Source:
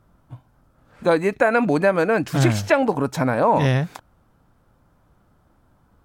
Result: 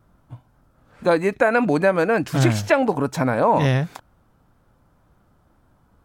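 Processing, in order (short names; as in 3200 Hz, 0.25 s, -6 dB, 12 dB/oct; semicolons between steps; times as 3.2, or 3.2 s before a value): vibrato 2 Hz 29 cents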